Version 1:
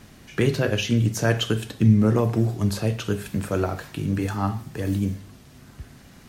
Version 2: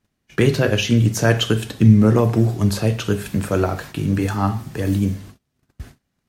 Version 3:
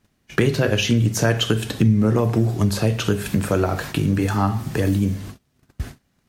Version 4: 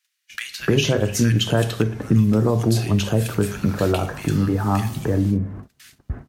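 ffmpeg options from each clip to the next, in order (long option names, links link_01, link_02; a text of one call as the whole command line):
ffmpeg -i in.wav -af "agate=range=-31dB:threshold=-42dB:ratio=16:detection=peak,volume=5dB" out.wav
ffmpeg -i in.wav -af "acompressor=threshold=-26dB:ratio=2.5,volume=7dB" out.wav
ffmpeg -i in.wav -filter_complex "[0:a]acrossover=split=1700[link_01][link_02];[link_01]adelay=300[link_03];[link_03][link_02]amix=inputs=2:normalize=0" out.wav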